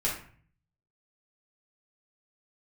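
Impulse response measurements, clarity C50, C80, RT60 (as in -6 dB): 5.0 dB, 9.5 dB, 0.45 s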